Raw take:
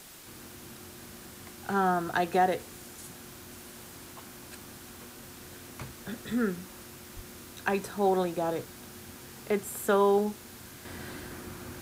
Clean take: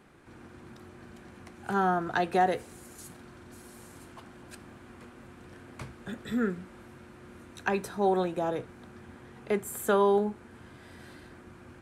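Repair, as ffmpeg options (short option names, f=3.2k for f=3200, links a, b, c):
-filter_complex "[0:a]asplit=3[a][b][c];[a]afade=t=out:st=7.15:d=0.02[d];[b]highpass=f=140:w=0.5412,highpass=f=140:w=1.3066,afade=t=in:st=7.15:d=0.02,afade=t=out:st=7.27:d=0.02[e];[c]afade=t=in:st=7.27:d=0.02[f];[d][e][f]amix=inputs=3:normalize=0,afwtdn=0.0035,asetnsamples=n=441:p=0,asendcmd='10.85 volume volume -7dB',volume=0dB"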